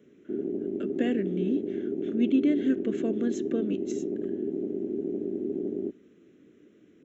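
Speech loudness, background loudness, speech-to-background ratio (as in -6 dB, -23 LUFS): -29.5 LUFS, -32.0 LUFS, 2.5 dB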